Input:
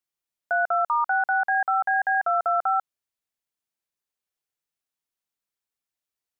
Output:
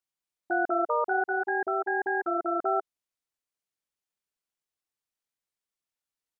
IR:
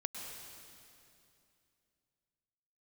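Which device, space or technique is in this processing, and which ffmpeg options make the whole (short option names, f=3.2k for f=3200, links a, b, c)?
octave pedal: -filter_complex "[0:a]asplit=2[a][b];[b]asetrate=22050,aresample=44100,atempo=2,volume=-1dB[c];[a][c]amix=inputs=2:normalize=0,asettb=1/sr,asplit=3[d][e][f];[d]atrim=end=1.274[g];[e]atrim=start=1.27:end=2.66,asetpts=PTS-STARTPTS,afade=t=in:d=0.004:c=qsin,afade=t=out:st=1.386:d=0.004:c=qsin,equalizer=f=770:t=o:w=1:g=-4[h];[f]atrim=start=2.656[i];[g][h]acrossfade=d=0.004:c1=hsin:c2=qsin[j];[j][i]acrossfade=d=0.004:c1=qsin:c2=hsin,volume=-6dB"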